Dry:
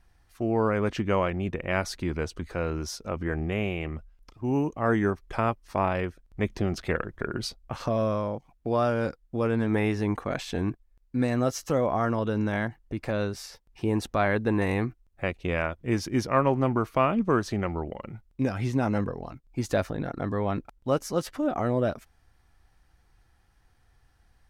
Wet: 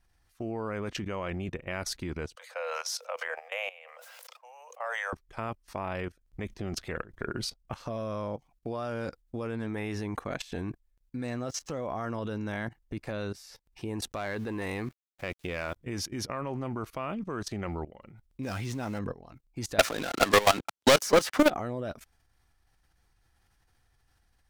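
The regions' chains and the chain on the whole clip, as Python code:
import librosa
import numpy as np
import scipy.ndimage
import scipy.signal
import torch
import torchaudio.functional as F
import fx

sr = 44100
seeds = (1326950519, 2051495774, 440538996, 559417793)

y = fx.chain(x, sr, fx.cheby1_highpass(hz=490.0, order=8),
    fx.sustainer(db_per_s=29.0), at=(2.35, 5.13))
y = fx.chain(y, sr, fx.lowpass(hz=8100.0, slope=12),
    fx.backlash(play_db=-53.0), at=(11.26, 11.81))
y = fx.chain(y, sr, fx.bass_treble(bass_db=-4, treble_db=1),
    fx.leveller(passes=1),
    fx.sample_gate(floor_db=-50.5), at=(14.12, 15.76))
y = fx.chain(y, sr, fx.zero_step(step_db=-40.0),
    fx.peak_eq(hz=4800.0, db=3.0, octaves=2.5), at=(18.43, 18.99))
y = fx.chain(y, sr, fx.weighting(curve='A'),
    fx.leveller(passes=5),
    fx.band_squash(depth_pct=100), at=(19.79, 21.5))
y = fx.high_shelf(y, sr, hz=2600.0, db=6.0)
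y = fx.level_steps(y, sr, step_db=17)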